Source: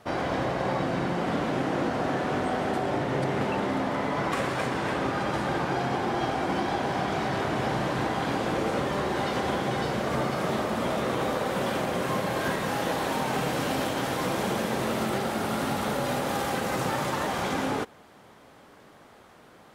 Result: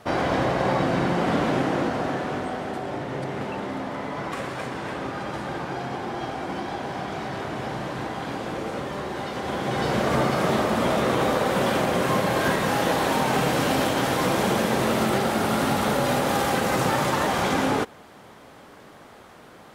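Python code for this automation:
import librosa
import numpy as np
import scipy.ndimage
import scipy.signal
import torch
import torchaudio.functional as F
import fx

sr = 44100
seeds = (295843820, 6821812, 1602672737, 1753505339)

y = fx.gain(x, sr, db=fx.line((1.51, 5.0), (2.65, -3.0), (9.36, -3.0), (9.96, 5.5)))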